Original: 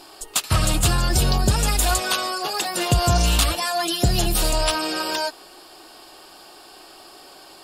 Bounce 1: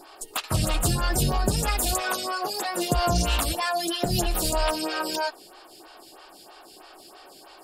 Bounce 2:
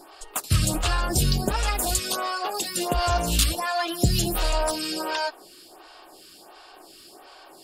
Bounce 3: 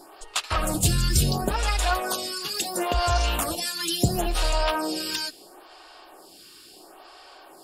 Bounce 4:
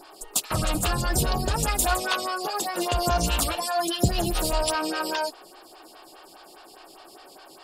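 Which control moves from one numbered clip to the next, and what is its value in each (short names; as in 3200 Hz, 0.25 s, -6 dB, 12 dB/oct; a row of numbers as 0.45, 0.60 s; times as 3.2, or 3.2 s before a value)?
photocell phaser, rate: 3.1, 1.4, 0.73, 4.9 Hz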